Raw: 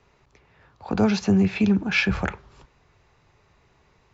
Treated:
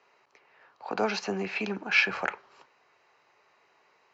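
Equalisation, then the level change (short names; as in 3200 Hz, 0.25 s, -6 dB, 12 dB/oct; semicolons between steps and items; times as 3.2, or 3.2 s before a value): HPF 520 Hz 12 dB/oct; LPF 5300 Hz 12 dB/oct; notch 3500 Hz, Q 8.4; 0.0 dB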